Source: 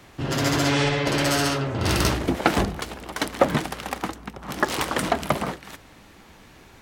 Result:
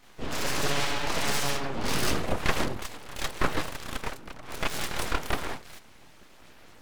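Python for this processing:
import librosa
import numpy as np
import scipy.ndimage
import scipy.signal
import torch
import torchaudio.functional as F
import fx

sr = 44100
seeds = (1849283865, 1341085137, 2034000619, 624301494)

y = fx.chorus_voices(x, sr, voices=4, hz=0.56, base_ms=29, depth_ms=4.1, mix_pct=60)
y = np.abs(y)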